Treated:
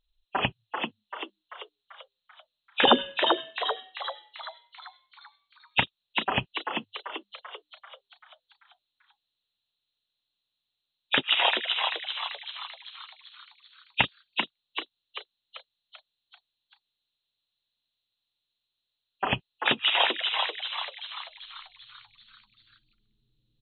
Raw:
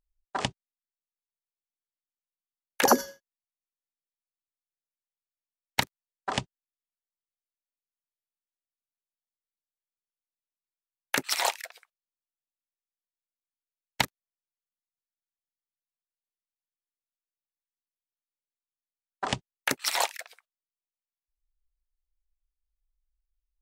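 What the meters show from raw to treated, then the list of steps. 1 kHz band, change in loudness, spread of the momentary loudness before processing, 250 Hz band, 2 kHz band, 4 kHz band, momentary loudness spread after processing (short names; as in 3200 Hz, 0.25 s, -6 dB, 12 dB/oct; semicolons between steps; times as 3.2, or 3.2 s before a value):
+3.5 dB, +1.5 dB, 16 LU, +2.5 dB, +6.0 dB, +9.5 dB, 22 LU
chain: nonlinear frequency compression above 2400 Hz 4:1; in parallel at -3 dB: compressor, threshold -31 dBFS, peak gain reduction 15.5 dB; on the sum: frequency-shifting echo 0.389 s, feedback 52%, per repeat +100 Hz, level -4.5 dB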